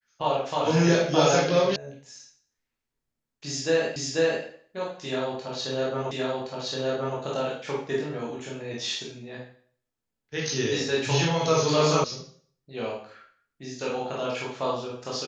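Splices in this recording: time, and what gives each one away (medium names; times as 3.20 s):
1.76 s: sound stops dead
3.96 s: repeat of the last 0.49 s
6.11 s: repeat of the last 1.07 s
12.04 s: sound stops dead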